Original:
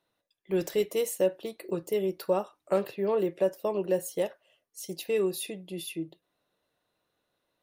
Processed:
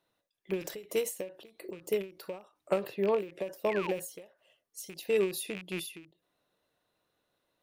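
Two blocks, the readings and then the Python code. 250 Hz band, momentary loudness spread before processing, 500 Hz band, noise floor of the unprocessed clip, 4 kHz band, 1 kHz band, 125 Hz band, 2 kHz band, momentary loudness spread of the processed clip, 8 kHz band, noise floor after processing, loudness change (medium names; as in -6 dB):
-5.5 dB, 10 LU, -4.5 dB, -81 dBFS, -2.5 dB, -3.0 dB, -5.0 dB, +2.0 dB, 16 LU, -2.5 dB, -82 dBFS, -3.5 dB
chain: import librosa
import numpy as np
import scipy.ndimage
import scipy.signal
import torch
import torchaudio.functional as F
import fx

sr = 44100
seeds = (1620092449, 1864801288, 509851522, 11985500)

y = fx.rattle_buzz(x, sr, strikes_db=-43.0, level_db=-28.0)
y = fx.spec_paint(y, sr, seeds[0], shape='fall', start_s=3.68, length_s=0.26, low_hz=640.0, high_hz=2500.0, level_db=-40.0)
y = fx.end_taper(y, sr, db_per_s=160.0)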